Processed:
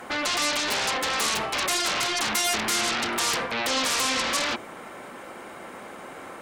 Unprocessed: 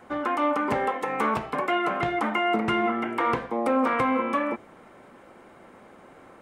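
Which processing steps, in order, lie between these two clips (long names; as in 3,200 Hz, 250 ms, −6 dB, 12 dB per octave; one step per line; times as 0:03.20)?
in parallel at −6.5 dB: sine wavefolder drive 19 dB, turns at −12.5 dBFS
on the sum: spectral tilt +2 dB per octave
level −7 dB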